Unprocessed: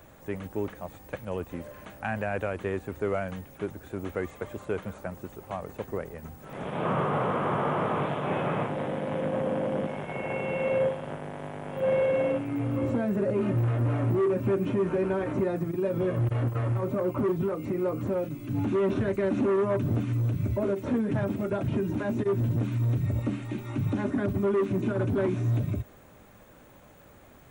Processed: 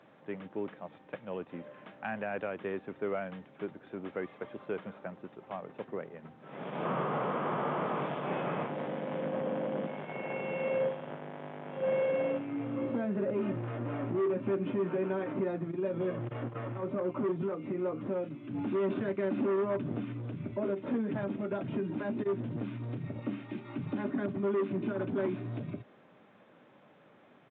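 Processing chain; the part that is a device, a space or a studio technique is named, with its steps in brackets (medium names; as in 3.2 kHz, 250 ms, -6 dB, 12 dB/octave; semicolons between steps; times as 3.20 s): Bluetooth headset (high-pass 150 Hz 24 dB/octave; resampled via 8 kHz; trim -5 dB; SBC 64 kbps 16 kHz)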